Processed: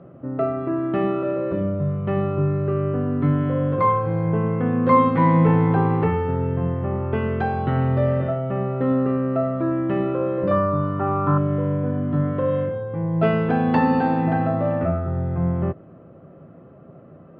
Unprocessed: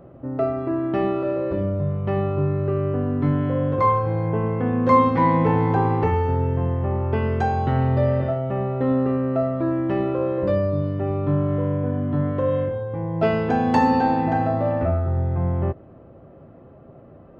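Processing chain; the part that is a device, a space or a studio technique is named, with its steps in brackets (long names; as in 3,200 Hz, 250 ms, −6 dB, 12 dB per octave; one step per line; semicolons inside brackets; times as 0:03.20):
guitar cabinet (loudspeaker in its box 100–3,700 Hz, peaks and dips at 170 Hz +7 dB, 860 Hz −4 dB, 1,300 Hz +4 dB)
0:10.51–0:11.38: flat-topped bell 1,100 Hz +13.5 dB 1.2 octaves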